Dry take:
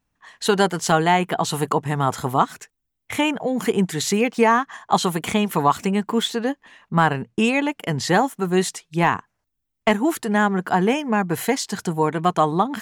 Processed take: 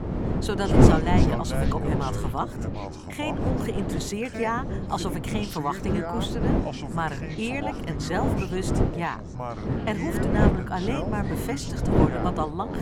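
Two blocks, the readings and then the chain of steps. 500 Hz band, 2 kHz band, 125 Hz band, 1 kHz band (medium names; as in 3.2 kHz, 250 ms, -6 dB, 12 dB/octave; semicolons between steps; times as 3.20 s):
-5.5 dB, -9.0 dB, +2.0 dB, -9.0 dB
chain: wind noise 290 Hz -16 dBFS; ever faster or slower copies 83 ms, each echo -5 st, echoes 3, each echo -6 dB; trim -10.5 dB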